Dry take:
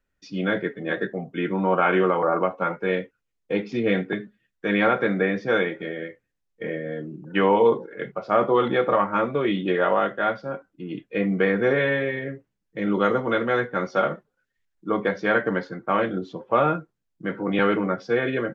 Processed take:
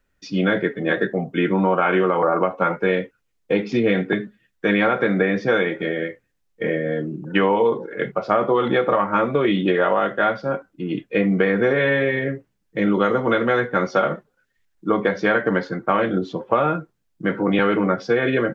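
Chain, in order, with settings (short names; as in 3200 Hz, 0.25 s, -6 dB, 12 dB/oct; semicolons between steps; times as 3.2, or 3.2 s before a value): compressor, threshold -22 dBFS, peak gain reduction 8.5 dB; gain +7.5 dB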